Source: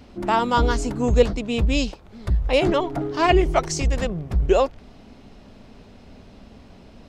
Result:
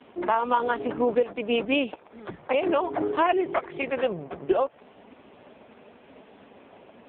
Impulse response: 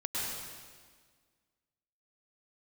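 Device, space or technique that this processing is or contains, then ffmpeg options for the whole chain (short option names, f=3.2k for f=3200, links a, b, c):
voicemail: -af "highpass=390,lowpass=3.1k,acompressor=threshold=-24dB:ratio=12,volume=6dB" -ar 8000 -c:a libopencore_amrnb -b:a 4750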